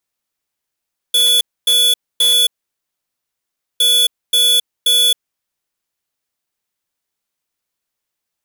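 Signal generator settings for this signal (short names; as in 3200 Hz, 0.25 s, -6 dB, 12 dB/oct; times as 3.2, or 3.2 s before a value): beep pattern square 3430 Hz, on 0.27 s, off 0.26 s, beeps 3, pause 1.33 s, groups 2, -12 dBFS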